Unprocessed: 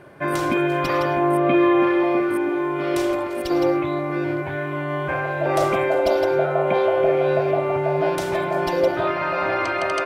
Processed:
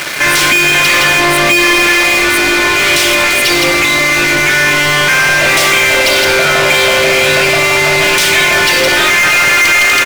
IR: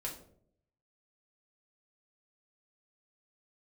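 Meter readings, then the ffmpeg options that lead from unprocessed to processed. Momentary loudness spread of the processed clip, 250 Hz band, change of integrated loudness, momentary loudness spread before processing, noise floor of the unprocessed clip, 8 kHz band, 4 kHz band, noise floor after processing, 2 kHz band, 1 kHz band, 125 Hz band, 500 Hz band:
2 LU, +3.0 dB, +13.5 dB, 7 LU, −27 dBFS, +29.0 dB, +26.5 dB, −11 dBFS, +21.5 dB, +8.5 dB, +6.0 dB, +4.0 dB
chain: -filter_complex "[0:a]firequalizer=gain_entry='entry(230,0);entry(750,-8);entry(2100,15)':delay=0.05:min_phase=1,acontrast=75,aeval=exprs='val(0)*gte(abs(val(0)),0.02)':channel_layout=same,asplit=2[link_01][link_02];[link_02]highpass=frequency=720:poles=1,volume=34dB,asoftclip=type=tanh:threshold=0dB[link_03];[link_01][link_03]amix=inputs=2:normalize=0,lowpass=frequency=7200:poles=1,volume=-6dB,asplit=2[link_04][link_05];[1:a]atrim=start_sample=2205,adelay=7[link_06];[link_05][link_06]afir=irnorm=-1:irlink=0,volume=-9.5dB[link_07];[link_04][link_07]amix=inputs=2:normalize=0,volume=-4dB"

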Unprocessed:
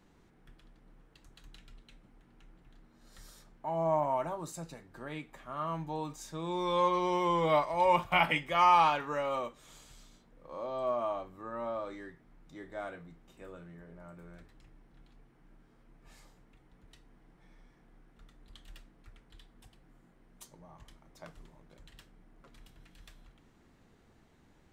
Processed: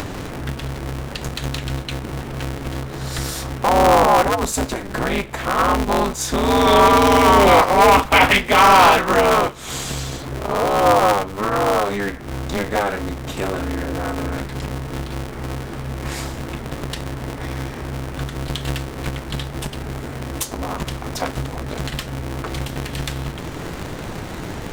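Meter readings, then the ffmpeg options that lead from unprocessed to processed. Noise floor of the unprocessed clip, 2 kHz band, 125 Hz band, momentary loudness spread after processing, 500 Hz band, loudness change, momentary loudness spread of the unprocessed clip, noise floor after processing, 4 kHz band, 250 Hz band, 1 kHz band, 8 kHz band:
−64 dBFS, +18.5 dB, +21.0 dB, 17 LU, +16.5 dB, +12.0 dB, 19 LU, −31 dBFS, +19.5 dB, +19.0 dB, +15.5 dB, can't be measured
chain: -af "acompressor=mode=upward:threshold=-33dB:ratio=2.5,apsyclip=24.5dB,aeval=exprs='val(0)*sgn(sin(2*PI*100*n/s))':channel_layout=same,volume=-6dB"

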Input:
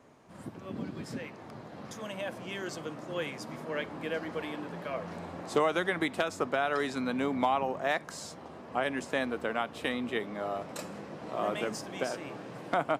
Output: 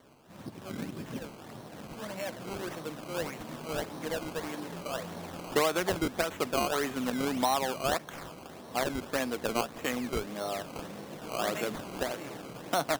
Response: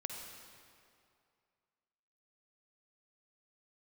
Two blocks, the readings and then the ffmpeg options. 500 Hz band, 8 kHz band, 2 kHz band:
0.0 dB, +7.0 dB, −2.0 dB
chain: -af "acrusher=samples=17:mix=1:aa=0.000001:lfo=1:lforange=17:lforate=1.7"

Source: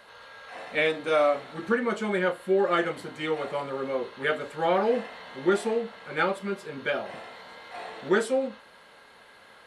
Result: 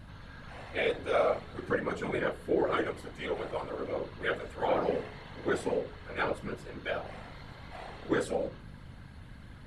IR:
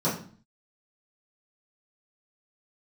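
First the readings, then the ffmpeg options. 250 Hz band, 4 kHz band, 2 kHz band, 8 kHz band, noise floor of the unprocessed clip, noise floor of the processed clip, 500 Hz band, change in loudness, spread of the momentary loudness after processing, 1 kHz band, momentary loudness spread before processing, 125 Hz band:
−5.5 dB, −6.0 dB, −6.0 dB, −6.0 dB, −53 dBFS, −49 dBFS, −5.5 dB, −5.5 dB, 19 LU, −6.0 dB, 17 LU, −0.5 dB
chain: -af "aeval=exprs='val(0)+0.01*(sin(2*PI*50*n/s)+sin(2*PI*2*50*n/s)/2+sin(2*PI*3*50*n/s)/3+sin(2*PI*4*50*n/s)/4+sin(2*PI*5*50*n/s)/5)':channel_layout=same,afftfilt=real='hypot(re,im)*cos(2*PI*random(0))':imag='hypot(re,im)*sin(2*PI*random(1))':win_size=512:overlap=0.75,bandreject=frequency=60.64:width_type=h:width=4,bandreject=frequency=121.28:width_type=h:width=4,bandreject=frequency=181.92:width_type=h:width=4,bandreject=frequency=242.56:width_type=h:width=4,bandreject=frequency=303.2:width_type=h:width=4,bandreject=frequency=363.84:width_type=h:width=4,bandreject=frequency=424.48:width_type=h:width=4,adynamicequalizer=threshold=0.00891:dfrequency=480:dqfactor=6:tfrequency=480:tqfactor=6:attack=5:release=100:ratio=0.375:range=1.5:mode=boostabove:tftype=bell"

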